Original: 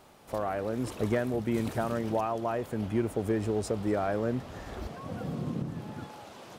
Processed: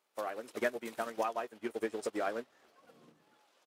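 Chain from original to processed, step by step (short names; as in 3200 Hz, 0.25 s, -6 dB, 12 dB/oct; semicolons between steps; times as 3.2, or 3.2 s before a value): HPF 520 Hz 12 dB/oct; bell 760 Hz -6.5 dB 1.3 oct; in parallel at -7 dB: overloaded stage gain 29.5 dB; on the sum: tempo 1.8×; doubler 13 ms -10.5 dB; upward expander 2.5:1, over -46 dBFS; gain +3.5 dB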